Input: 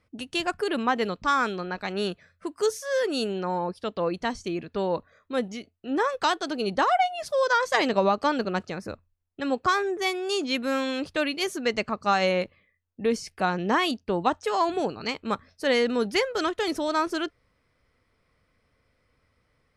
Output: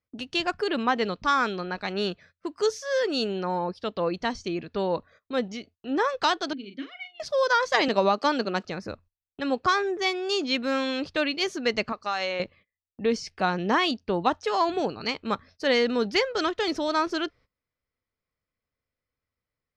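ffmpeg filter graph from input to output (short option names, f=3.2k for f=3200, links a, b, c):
-filter_complex "[0:a]asettb=1/sr,asplit=3[a][b][c];[a]atrim=end=6.534[d];[b]atrim=start=6.53:end=7.2,asetpts=PTS-STARTPTS,afade=t=in:d=0.004:c=qsin,afade=t=out:st=0.666:d=0.004:c=qsin,asplit=3[e][f][g];[e]bandpass=f=270:t=q:w=8,volume=0dB[h];[f]bandpass=f=2.29k:t=q:w=8,volume=-6dB[i];[g]bandpass=f=3.01k:t=q:w=8,volume=-9dB[j];[h][i][j]amix=inputs=3:normalize=0,asplit=2[k][l];[l]adelay=40,volume=-9.5dB[m];[k][m]amix=inputs=2:normalize=0,atrim=end_sample=29547[n];[c]atrim=start=7.196[o];[d][n]acrossfade=d=0.004:c1=hsin:c2=qsin[p];[p][o]acrossfade=d=0.004:c1=qsin:c2=hsin,asettb=1/sr,asplit=3[q][r][s];[q]atrim=end=7.884[t];[r]atrim=start=7.88:end=8.65,asetpts=PTS-STARTPTS,afade=t=in:d=0.004:c=qsin,afade=t=out:st=0.766:d=0.004:c=qsin,highpass=f=180:w=0.5412,highpass=f=180:w=1.3066,highshelf=f=6.7k:g=8[u];[s]atrim=start=8.646[v];[t][u]acrossfade=d=0.004:c1=hsin:c2=qsin[w];[w][v]acrossfade=d=0.004:c1=qsin:c2=hsin,asettb=1/sr,asplit=3[x][y][z];[x]atrim=end=11.924[aa];[y]atrim=start=11.92:end=12.4,asetpts=PTS-STARTPTS,afade=t=in:d=0.004:c=qsin,afade=t=out:st=0.476:d=0.004:c=qsin,agate=range=-33dB:threshold=-45dB:ratio=3:release=100:detection=peak,equalizer=f=140:w=0.51:g=-14.5,acompressor=threshold=-27dB:ratio=2:attack=3.2:release=140:knee=1:detection=peak[ab];[z]atrim=start=12.396[ac];[aa][ab]acrossfade=d=0.004:c1=hsin:c2=qsin[ad];[ad][ac]acrossfade=d=0.004:c1=qsin:c2=hsin,highshelf=f=7.5k:t=q:w=1.5:g=-13,agate=range=-20dB:threshold=-51dB:ratio=16:detection=peak"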